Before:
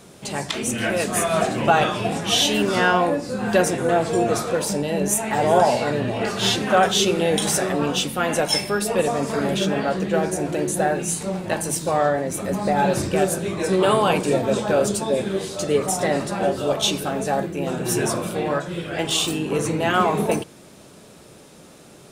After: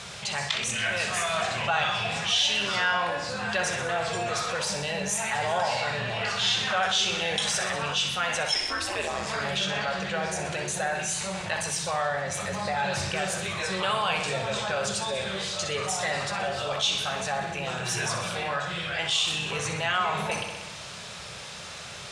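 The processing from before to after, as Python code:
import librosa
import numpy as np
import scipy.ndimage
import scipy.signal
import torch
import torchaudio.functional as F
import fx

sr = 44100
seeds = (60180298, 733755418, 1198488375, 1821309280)

y = scipy.signal.sosfilt(scipy.signal.butter(2, 71.0, 'highpass', fs=sr, output='sos'), x)
y = fx.tone_stack(y, sr, knobs='10-0-10')
y = fx.ring_mod(y, sr, carrier_hz=fx.line((8.54, 200.0), (9.25, 55.0)), at=(8.54, 9.25), fade=0.02)
y = fx.air_absorb(y, sr, metres=110.0)
y = fx.echo_feedback(y, sr, ms=63, feedback_pct=59, wet_db=-10)
y = fx.env_flatten(y, sr, amount_pct=50)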